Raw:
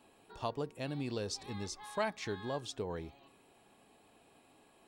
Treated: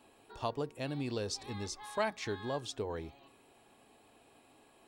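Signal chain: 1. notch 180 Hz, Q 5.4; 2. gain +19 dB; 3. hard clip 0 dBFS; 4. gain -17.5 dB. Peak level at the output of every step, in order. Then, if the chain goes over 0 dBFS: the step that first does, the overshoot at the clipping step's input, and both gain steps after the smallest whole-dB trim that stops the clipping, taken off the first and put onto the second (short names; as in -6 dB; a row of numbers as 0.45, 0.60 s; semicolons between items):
-21.0, -2.0, -2.0, -19.5 dBFS; no overload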